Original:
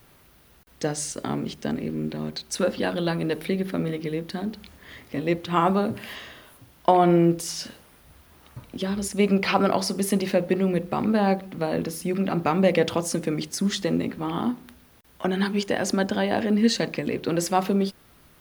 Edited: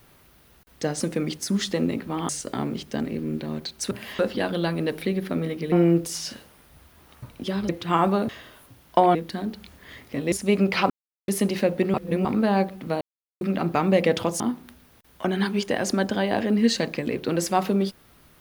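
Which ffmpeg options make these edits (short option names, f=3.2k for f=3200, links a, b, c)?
-filter_complex "[0:a]asplit=17[a][b][c][d][e][f][g][h][i][j][k][l][m][n][o][p][q];[a]atrim=end=1.002[r];[b]atrim=start=13.108:end=14.402[s];[c]atrim=start=0.998:end=2.622[t];[d]atrim=start=5.918:end=6.202[u];[e]atrim=start=2.618:end=4.152[v];[f]atrim=start=7.058:end=9.032[w];[g]atrim=start=5.318:end=5.922[x];[h]atrim=start=6.198:end=7.062[y];[i]atrim=start=4.148:end=5.322[z];[j]atrim=start=9.028:end=9.61,asetpts=PTS-STARTPTS,afade=t=out:st=0.578:d=0.004:c=hsin[aa];[k]atrim=start=9.61:end=9.99,asetpts=PTS-STARTPTS,volume=0[ab];[l]atrim=start=9.99:end=10.652,asetpts=PTS-STARTPTS,afade=t=in:d=0.004:c=hsin[ac];[m]atrim=start=10.648:end=10.962,asetpts=PTS-STARTPTS,areverse[ad];[n]atrim=start=10.958:end=11.72,asetpts=PTS-STARTPTS,afade=t=out:st=0.758:d=0.004:c=hsin[ae];[o]atrim=start=11.72:end=12.12,asetpts=PTS-STARTPTS,volume=0[af];[p]atrim=start=12.12:end=13.112,asetpts=PTS-STARTPTS,afade=t=in:d=0.004:c=hsin[ag];[q]atrim=start=14.398[ah];[r][s]acrossfade=d=0.004:c1=hsin:c2=hsin[ai];[ai][t]acrossfade=d=0.004:c1=hsin:c2=hsin[aj];[aj][u]acrossfade=d=0.004:c1=hsin:c2=hsin[ak];[ak][v]acrossfade=d=0.004:c1=hsin:c2=hsin[al];[al][w]acrossfade=d=0.004:c1=hsin:c2=hsin[am];[am][x]acrossfade=d=0.004:c1=hsin:c2=hsin[an];[an][y]acrossfade=d=0.004:c1=hsin:c2=hsin[ao];[ao][z]acrossfade=d=0.004:c1=hsin:c2=hsin[ap];[aa][ab][ac]concat=n=3:v=0:a=1[aq];[ap][aq]acrossfade=d=0.004:c1=hsin:c2=hsin[ar];[ar][ad]acrossfade=d=0.004:c1=hsin:c2=hsin[as];[ae][af][ag]concat=n=3:v=0:a=1[at];[as][at]acrossfade=d=0.004:c1=hsin:c2=hsin[au];[au][ah]acrossfade=d=0.004:c1=hsin:c2=hsin"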